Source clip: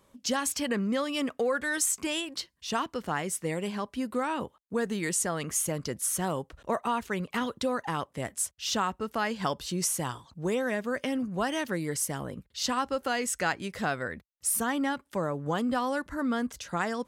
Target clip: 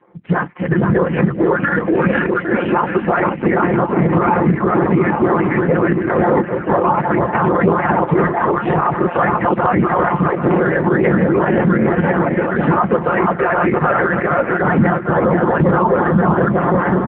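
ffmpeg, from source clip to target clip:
-filter_complex "[0:a]asettb=1/sr,asplit=3[a][b][c];[a]atrim=end=15.604[d];[b]atrim=start=15.6:end=16.12,asetpts=PTS-STARTPTS,afade=t=in:d=0.004:c=qsin,afade=t=out:st=0.516:d=0.004:c=qsin,aeval=exprs='val(0)+0.00794*(sin(2*PI*60*n/s)+sin(2*PI*2*60*n/s)/2+sin(2*PI*3*60*n/s)/3+sin(2*PI*4*60*n/s)/4+sin(2*PI*5*60*n/s)/5)':c=same[e];[c]atrim=start=16.116[f];[d][e]acrossfade=d=0.004:c1=hsin:c2=qsin[g];[g][f]acrossfade=d=0.004:c1=qsin:c2=hsin,dynaudnorm=f=460:g=7:m=8dB,aecho=1:1:480|816|1051|1216|1331:0.631|0.398|0.251|0.158|0.1,afftfilt=real='hypot(re,im)*cos(2*PI*random(0))':imag='hypot(re,im)*sin(2*PI*random(1))':win_size=512:overlap=0.75,highpass=f=230:t=q:w=0.5412,highpass=f=230:t=q:w=1.307,lowpass=f=2.1k:t=q:w=0.5176,lowpass=f=2.1k:t=q:w=0.7071,lowpass=f=2.1k:t=q:w=1.932,afreqshift=-96,aecho=1:1:5.7:0.52,alimiter=level_in=23dB:limit=-1dB:release=50:level=0:latency=1,volume=-3dB" -ar 8000 -c:a libopencore_amrnb -b:a 5900

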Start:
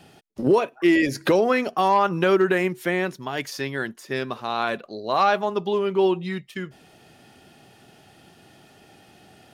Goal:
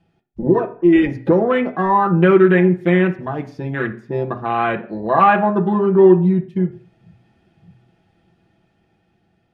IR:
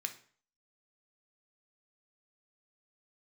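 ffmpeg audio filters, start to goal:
-filter_complex "[0:a]asettb=1/sr,asplit=3[a][b][c];[a]atrim=end=2.704[d];[b]atrim=start=2.7:end=3.81,asetpts=PTS-STARTPTS,afade=t=in:d=0.004:c=qsin,afade=t=out:st=1.106:d=0.004:c=qsin,acrusher=bits=7:mix=0:aa=0.5[e];[c]atrim=start=3.806[f];[d][e]acrossfade=d=0.004:c1=hsin:c2=qsin[g];[g][f]acrossfade=d=0.004:c1=qsin:c2=hsin,aemphasis=mode=reproduction:type=bsi,dynaudnorm=f=750:g=5:m=7dB,afwtdn=0.0631,asplit=2[h][i];[1:a]atrim=start_sample=2205,lowpass=2.6k,adelay=6[j];[i][j]afir=irnorm=-1:irlink=0,volume=2dB[k];[h][k]amix=inputs=2:normalize=0,volume=-1.5dB"

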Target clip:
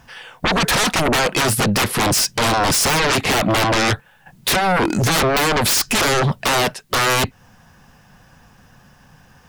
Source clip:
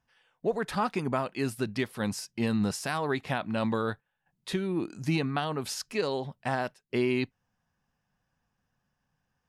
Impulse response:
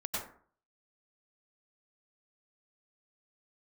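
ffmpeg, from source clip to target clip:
-filter_complex "[0:a]asplit=2[a][b];[b]acompressor=threshold=-36dB:ratio=6,volume=2.5dB[c];[a][c]amix=inputs=2:normalize=0,aeval=exprs='0.211*sin(PI/2*7.94*val(0)/0.211)':c=same"

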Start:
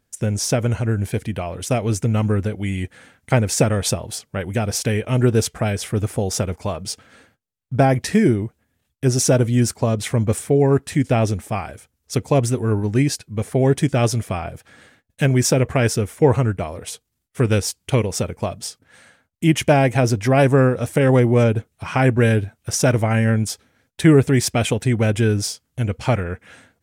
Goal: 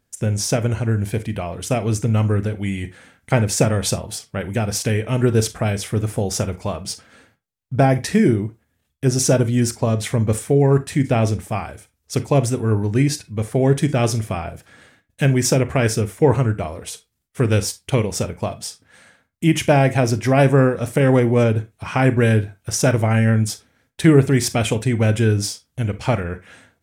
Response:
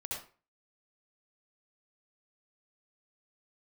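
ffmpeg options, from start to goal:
-filter_complex "[0:a]asplit=2[a][b];[1:a]atrim=start_sample=2205,asetrate=83790,aresample=44100[c];[b][c]afir=irnorm=-1:irlink=0,volume=-5dB[d];[a][d]amix=inputs=2:normalize=0,volume=-1.5dB"

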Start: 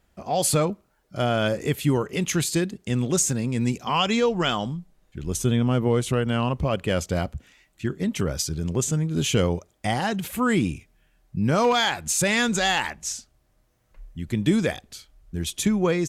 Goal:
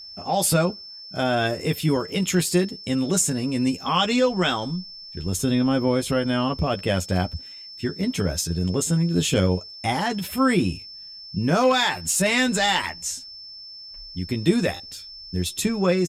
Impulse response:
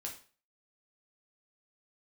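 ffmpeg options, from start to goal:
-filter_complex "[0:a]asplit=2[a][b];[b]adelay=12,volume=-5dB[c];[a][c]amix=inputs=2:normalize=0,aeval=exprs='val(0)+0.0126*sin(2*PI*5000*n/s)':c=same,asetrate=46722,aresample=44100,atempo=0.943874"

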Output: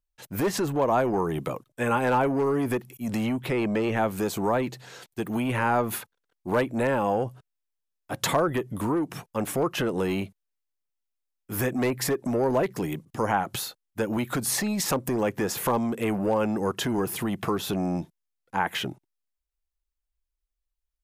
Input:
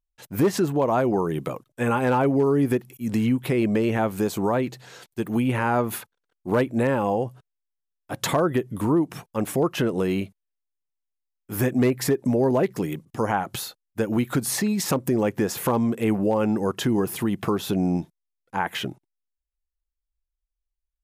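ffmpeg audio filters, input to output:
-filter_complex "[0:a]asettb=1/sr,asplit=3[a][b][c];[a]atrim=end=3.384[d];[b]atrim=start=3.38:end=3.97,asetpts=PTS-STARTPTS,afade=t=in:d=0.004:c=qsin,afade=t=out:st=0.586:d=0.004:c=qsin,equalizer=f=12k:t=o:w=1.1:g=-7[e];[c]atrim=start=3.966[f];[d][e]acrossfade=d=0.004:c1=hsin:c2=qsin[g];[g][f]acrossfade=d=0.004:c1=qsin:c2=hsin,acrossover=split=540[h][i];[h]asoftclip=type=tanh:threshold=-24.5dB[j];[j][i]amix=inputs=2:normalize=0"

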